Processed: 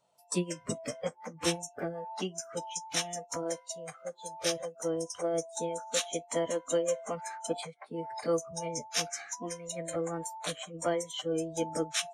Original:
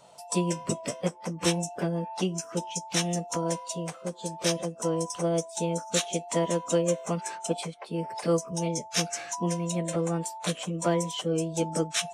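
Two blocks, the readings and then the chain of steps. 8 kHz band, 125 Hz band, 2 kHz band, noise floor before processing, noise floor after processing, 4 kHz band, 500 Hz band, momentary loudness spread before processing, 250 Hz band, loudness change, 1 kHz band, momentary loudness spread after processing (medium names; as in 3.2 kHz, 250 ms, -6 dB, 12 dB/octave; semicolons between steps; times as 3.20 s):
-4.0 dB, -12.0 dB, -3.5 dB, -47 dBFS, -60 dBFS, -3.5 dB, -3.5 dB, 5 LU, -8.0 dB, -5.0 dB, -5.0 dB, 7 LU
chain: spectral noise reduction 16 dB; trim -3 dB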